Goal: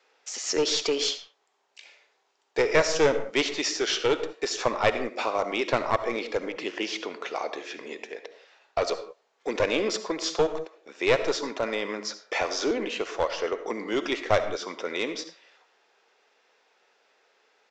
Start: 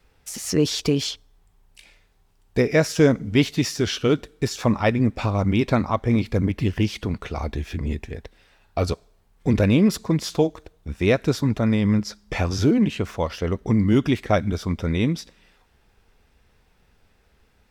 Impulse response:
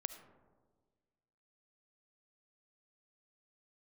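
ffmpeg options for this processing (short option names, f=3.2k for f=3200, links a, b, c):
-filter_complex "[0:a]highpass=f=410:w=0.5412,highpass=f=410:w=1.3066,aresample=16000,aeval=exprs='clip(val(0),-1,0.0794)':c=same,aresample=44100[a];[1:a]atrim=start_sample=2205,afade=t=out:st=0.24:d=0.01,atrim=end_sample=11025[b];[a][b]afir=irnorm=-1:irlink=0,volume=3.5dB"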